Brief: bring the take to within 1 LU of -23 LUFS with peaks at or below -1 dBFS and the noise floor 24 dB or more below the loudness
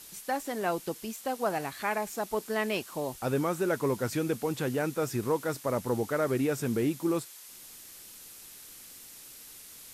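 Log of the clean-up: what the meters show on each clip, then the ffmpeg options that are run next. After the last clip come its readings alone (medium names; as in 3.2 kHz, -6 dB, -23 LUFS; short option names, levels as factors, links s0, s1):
noise floor -49 dBFS; noise floor target -55 dBFS; loudness -31.0 LUFS; peak level -17.5 dBFS; loudness target -23.0 LUFS
-> -af "afftdn=nr=6:nf=-49"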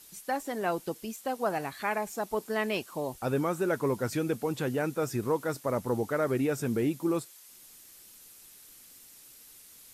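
noise floor -54 dBFS; noise floor target -55 dBFS
-> -af "afftdn=nr=6:nf=-54"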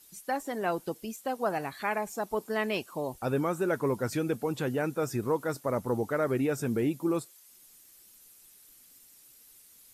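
noise floor -57 dBFS; loudness -31.0 LUFS; peak level -17.5 dBFS; loudness target -23.0 LUFS
-> -af "volume=2.51"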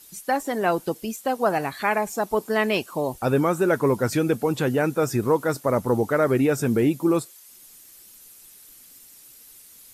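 loudness -23.5 LUFS; peak level -9.5 dBFS; noise floor -49 dBFS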